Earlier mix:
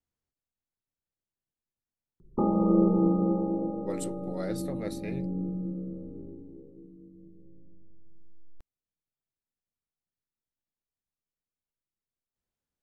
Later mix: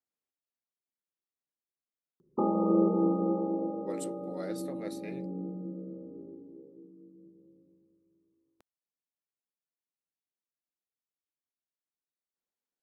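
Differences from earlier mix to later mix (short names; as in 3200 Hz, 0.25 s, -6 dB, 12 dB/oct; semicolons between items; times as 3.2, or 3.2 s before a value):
speech -3.5 dB; master: add HPF 260 Hz 12 dB/oct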